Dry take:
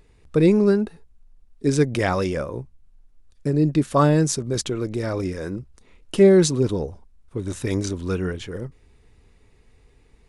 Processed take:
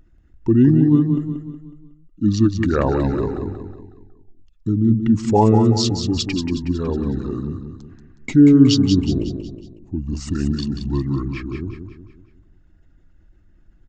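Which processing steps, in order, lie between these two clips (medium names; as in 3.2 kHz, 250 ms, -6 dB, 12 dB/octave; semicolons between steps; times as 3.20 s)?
resonances exaggerated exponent 1.5; on a send: feedback delay 136 ms, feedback 45%, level -7 dB; on the sum: speed mistake 45 rpm record played at 33 rpm; trim +2.5 dB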